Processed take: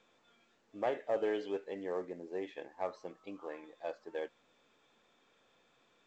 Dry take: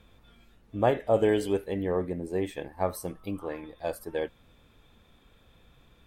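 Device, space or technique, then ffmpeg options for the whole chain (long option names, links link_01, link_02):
telephone: -af "highpass=350,lowpass=3600,asoftclip=type=tanh:threshold=-16.5dB,volume=-7dB" -ar 16000 -c:a pcm_mulaw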